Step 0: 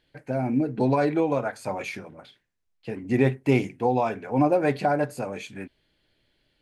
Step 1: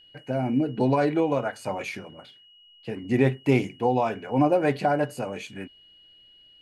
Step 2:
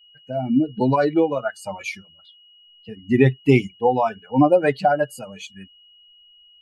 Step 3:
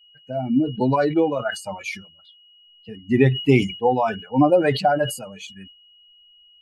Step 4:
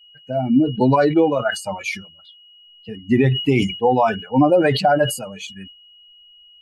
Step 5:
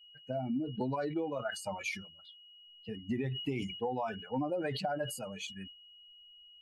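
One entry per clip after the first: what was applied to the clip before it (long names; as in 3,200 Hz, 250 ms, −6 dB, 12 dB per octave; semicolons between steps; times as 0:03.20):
steady tone 2,900 Hz −52 dBFS
spectral dynamics exaggerated over time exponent 2; level +8.5 dB
level that may fall only so fast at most 120 dB per second; level −1 dB
brickwall limiter −11 dBFS, peak gain reduction 8 dB; level +4.5 dB
downward compressor 4 to 1, threshold −25 dBFS, peak gain reduction 12 dB; level −8.5 dB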